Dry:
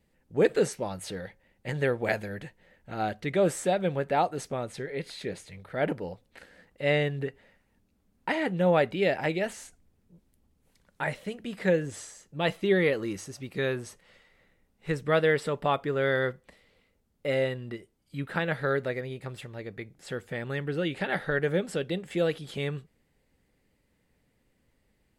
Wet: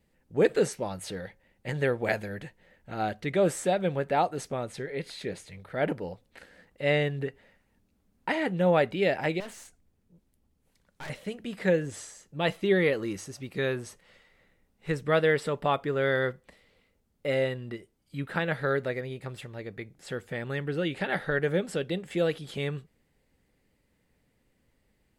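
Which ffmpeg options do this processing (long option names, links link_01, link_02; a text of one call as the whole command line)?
ffmpeg -i in.wav -filter_complex "[0:a]asettb=1/sr,asplit=3[link_01][link_02][link_03];[link_01]atrim=end=9.404[link_04];[link_02]atrim=start=9.4:end=11.1,asetpts=PTS-STARTPTS,afade=type=in:duration=0.004:curve=qsin,afade=type=out:start_time=1.696:duration=0.004:curve=qsin,aeval=exprs='(tanh(79.4*val(0)+0.6)-tanh(0.6))/79.4':channel_layout=same[link_05];[link_03]atrim=start=11.096[link_06];[link_04][link_05]acrossfade=duration=0.004:curve1=hsin:curve2=qsin[link_07];[link_07][link_06]acrossfade=duration=0.004:curve1=qsin:curve2=hsin" out.wav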